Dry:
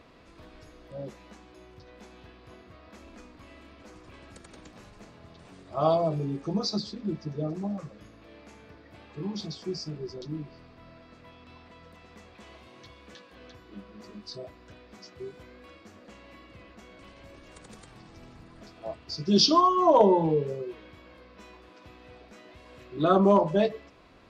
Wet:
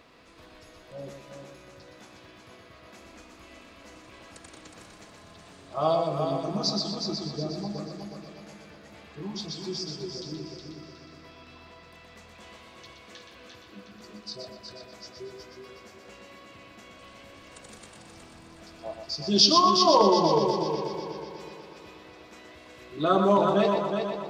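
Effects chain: tilt +1.5 dB/oct; on a send: multi-head echo 0.122 s, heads first and third, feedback 57%, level -6.5 dB

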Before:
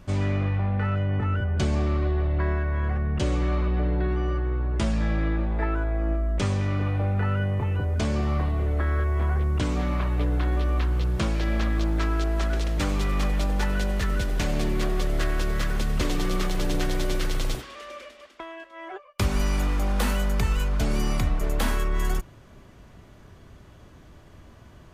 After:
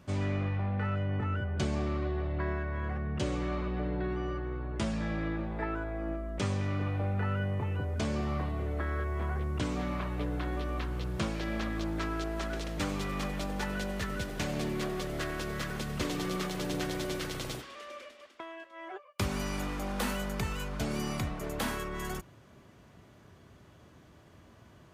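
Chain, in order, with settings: HPF 90 Hz 12 dB/oct; gain -5 dB

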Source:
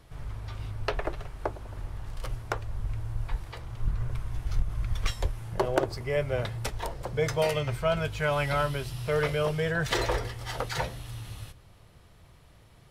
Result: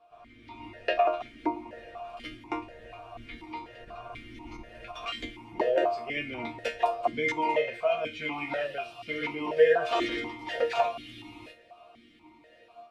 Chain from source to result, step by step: AGC gain up to 9.5 dB; resonator bank A#3 sus4, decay 0.27 s; 7.32–9.57 flange 1.5 Hz, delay 7.4 ms, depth 5.9 ms, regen -68%; maximiser +26.5 dB; vowel sequencer 4.1 Hz; gain -2 dB

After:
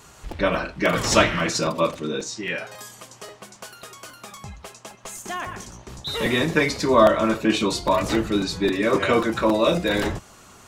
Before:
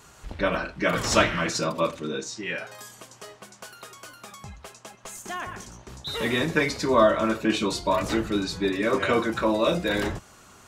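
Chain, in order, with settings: bell 1500 Hz -2.5 dB 0.33 oct; crackling interface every 0.27 s, samples 256, repeat, from 0.31; gain +3.5 dB

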